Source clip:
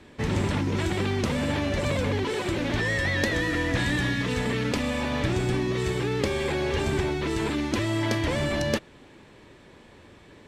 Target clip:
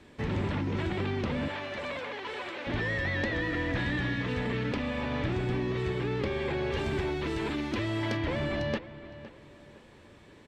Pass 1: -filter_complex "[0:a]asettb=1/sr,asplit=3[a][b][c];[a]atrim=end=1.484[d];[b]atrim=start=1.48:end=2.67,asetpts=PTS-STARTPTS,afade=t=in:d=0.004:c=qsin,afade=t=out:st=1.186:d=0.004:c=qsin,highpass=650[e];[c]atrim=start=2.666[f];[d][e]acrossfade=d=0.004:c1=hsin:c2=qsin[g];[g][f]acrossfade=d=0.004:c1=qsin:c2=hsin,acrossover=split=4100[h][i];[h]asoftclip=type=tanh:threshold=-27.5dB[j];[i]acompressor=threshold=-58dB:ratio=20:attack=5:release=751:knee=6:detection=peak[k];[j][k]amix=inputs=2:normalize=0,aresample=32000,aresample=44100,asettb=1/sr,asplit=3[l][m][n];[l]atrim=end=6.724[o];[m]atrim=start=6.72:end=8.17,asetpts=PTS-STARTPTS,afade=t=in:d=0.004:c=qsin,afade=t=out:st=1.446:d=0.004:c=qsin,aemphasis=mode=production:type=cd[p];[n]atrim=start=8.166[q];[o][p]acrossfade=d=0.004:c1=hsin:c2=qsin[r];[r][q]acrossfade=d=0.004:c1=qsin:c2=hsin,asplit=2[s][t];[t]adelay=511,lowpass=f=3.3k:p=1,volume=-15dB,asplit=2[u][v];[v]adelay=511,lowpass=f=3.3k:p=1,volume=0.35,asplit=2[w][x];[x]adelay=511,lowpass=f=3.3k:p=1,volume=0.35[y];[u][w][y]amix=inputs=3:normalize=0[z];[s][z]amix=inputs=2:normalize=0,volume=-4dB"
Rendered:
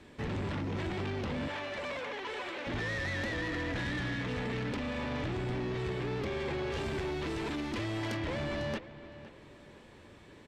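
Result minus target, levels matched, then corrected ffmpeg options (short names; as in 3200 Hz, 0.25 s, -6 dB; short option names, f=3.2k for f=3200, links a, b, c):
soft clip: distortion +13 dB
-filter_complex "[0:a]asettb=1/sr,asplit=3[a][b][c];[a]atrim=end=1.484[d];[b]atrim=start=1.48:end=2.67,asetpts=PTS-STARTPTS,afade=t=in:d=0.004:c=qsin,afade=t=out:st=1.186:d=0.004:c=qsin,highpass=650[e];[c]atrim=start=2.666[f];[d][e]acrossfade=d=0.004:c1=hsin:c2=qsin[g];[g][f]acrossfade=d=0.004:c1=qsin:c2=hsin,acrossover=split=4100[h][i];[h]asoftclip=type=tanh:threshold=-16dB[j];[i]acompressor=threshold=-58dB:ratio=20:attack=5:release=751:knee=6:detection=peak[k];[j][k]amix=inputs=2:normalize=0,aresample=32000,aresample=44100,asettb=1/sr,asplit=3[l][m][n];[l]atrim=end=6.724[o];[m]atrim=start=6.72:end=8.17,asetpts=PTS-STARTPTS,afade=t=in:d=0.004:c=qsin,afade=t=out:st=1.446:d=0.004:c=qsin,aemphasis=mode=production:type=cd[p];[n]atrim=start=8.166[q];[o][p]acrossfade=d=0.004:c1=hsin:c2=qsin[r];[r][q]acrossfade=d=0.004:c1=qsin:c2=hsin,asplit=2[s][t];[t]adelay=511,lowpass=f=3.3k:p=1,volume=-15dB,asplit=2[u][v];[v]adelay=511,lowpass=f=3.3k:p=1,volume=0.35,asplit=2[w][x];[x]adelay=511,lowpass=f=3.3k:p=1,volume=0.35[y];[u][w][y]amix=inputs=3:normalize=0[z];[s][z]amix=inputs=2:normalize=0,volume=-4dB"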